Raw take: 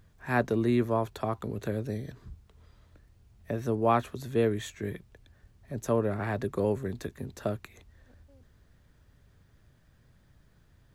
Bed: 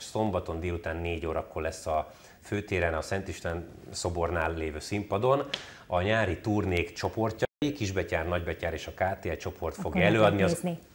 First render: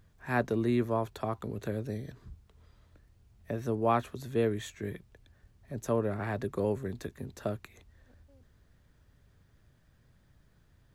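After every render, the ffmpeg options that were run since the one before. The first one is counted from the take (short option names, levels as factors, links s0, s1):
-af "volume=0.75"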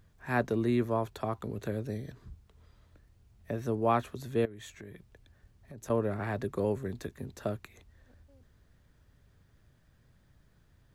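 -filter_complex "[0:a]asettb=1/sr,asplit=3[s0][s1][s2];[s0]atrim=end=4.454[s3];[s1]atrim=start=4.45:end=5.9,asetpts=PTS-STARTPTS,afade=t=in:d=0.004:c=qsin,afade=t=out:st=1.446:d=0.004:c=qsin,acompressor=threshold=0.00794:ratio=8:attack=3.2:release=140:knee=1:detection=peak[s4];[s2]atrim=start=5.896[s5];[s3][s4]acrossfade=d=0.004:c1=hsin:c2=qsin[s6];[s6][s5]acrossfade=d=0.004:c1=qsin:c2=hsin"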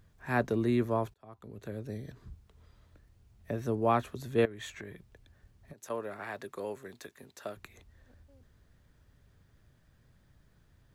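-filter_complex "[0:a]asettb=1/sr,asplit=3[s0][s1][s2];[s0]atrim=end=4.384[s3];[s1]atrim=start=4.38:end=4.94,asetpts=PTS-STARTPTS,afade=t=in:d=0.004:c=qsin,afade=t=out:st=0.556:d=0.004:c=qsin,equalizer=f=1600:w=0.36:g=7[s4];[s2]atrim=start=4.936[s5];[s3][s4]acrossfade=d=0.004:c1=hsin:c2=qsin[s6];[s6][s5]acrossfade=d=0.004:c1=qsin:c2=hsin,asettb=1/sr,asplit=3[s7][s8][s9];[s7]atrim=end=5.734[s10];[s8]atrim=start=5.73:end=7.57,asetpts=PTS-STARTPTS,afade=t=in:d=0.004:c=qsin,afade=t=out:st=1.836:d=0.004:c=qsin,highpass=f=960:p=1[s11];[s9]atrim=start=7.566[s12];[s10][s11]acrossfade=d=0.004:c1=hsin:c2=qsin[s13];[s13][s12]acrossfade=d=0.004:c1=qsin:c2=hsin,asplit=2[s14][s15];[s14]atrim=end=1.14,asetpts=PTS-STARTPTS,afade=t=out:st=1.136:d=0.004:c=hsin[s16];[s15]atrim=start=1.14,asetpts=PTS-STARTPTS,afade=t=in:d=1.13[s17];[s16][s17]concat=n=2:v=0:a=1"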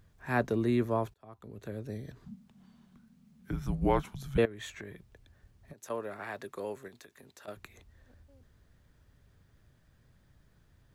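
-filter_complex "[0:a]asettb=1/sr,asplit=3[s0][s1][s2];[s0]atrim=end=2.254[s3];[s1]atrim=start=2.25:end=4.38,asetpts=PTS-STARTPTS,afade=t=in:d=0.004:c=qsin,afade=t=out:st=2.126:d=0.004:c=qsin,afreqshift=-270[s4];[s2]atrim=start=4.376[s5];[s3][s4]acrossfade=d=0.004:c1=hsin:c2=qsin[s6];[s6][s5]acrossfade=d=0.004:c1=qsin:c2=hsin,asettb=1/sr,asplit=3[s7][s8][s9];[s7]atrim=end=6.884[s10];[s8]atrim=start=6.88:end=7.48,asetpts=PTS-STARTPTS,afade=t=in:d=0.004:c=qsin,afade=t=out:st=0.596:d=0.004:c=qsin,acompressor=threshold=0.00355:ratio=6:attack=3.2:release=140:knee=1:detection=peak[s11];[s9]atrim=start=7.476[s12];[s10][s11]acrossfade=d=0.004:c1=hsin:c2=qsin[s13];[s13][s12]acrossfade=d=0.004:c1=qsin:c2=hsin"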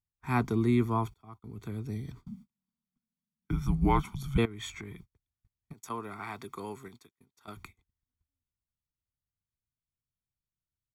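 -af "agate=range=0.0141:threshold=0.00251:ratio=16:detection=peak,aecho=1:1:0.9:0.87"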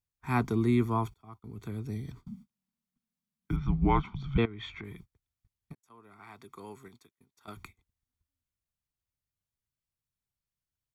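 -filter_complex "[0:a]asettb=1/sr,asplit=3[s0][s1][s2];[s0]atrim=end=3.564[s3];[s1]atrim=start=3.56:end=4.84,asetpts=PTS-STARTPTS,afade=t=in:d=0.004:c=qsin,afade=t=out:st=1.276:d=0.004:c=qsin,lowpass=f=3900:w=0.5412,lowpass=f=3900:w=1.3066[s4];[s2]atrim=start=4.836[s5];[s3][s4]acrossfade=d=0.004:c1=hsin:c2=qsin[s6];[s6][s5]acrossfade=d=0.004:c1=qsin:c2=hsin,asplit=2[s7][s8];[s7]atrim=end=5.75,asetpts=PTS-STARTPTS,afade=t=out:st=5.746:d=0.004:c=hsin[s9];[s8]atrim=start=5.75,asetpts=PTS-STARTPTS,afade=t=in:d=1.74[s10];[s9][s10]concat=n=2:v=0:a=1"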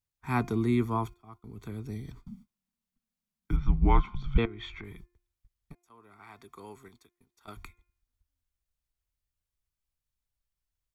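-af "bandreject=f=351.3:t=h:w=4,bandreject=f=702.6:t=h:w=4,bandreject=f=1053.9:t=h:w=4,bandreject=f=1405.2:t=h:w=4,bandreject=f=1756.5:t=h:w=4,bandreject=f=2107.8:t=h:w=4,bandreject=f=2459.1:t=h:w=4,asubboost=boost=5.5:cutoff=54"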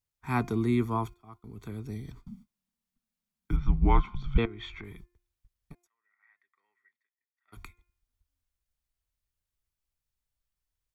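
-filter_complex "[0:a]asplit=3[s0][s1][s2];[s0]afade=t=out:st=5.86:d=0.02[s3];[s1]bandpass=f=1900:t=q:w=20,afade=t=in:st=5.86:d=0.02,afade=t=out:st=7.52:d=0.02[s4];[s2]afade=t=in:st=7.52:d=0.02[s5];[s3][s4][s5]amix=inputs=3:normalize=0"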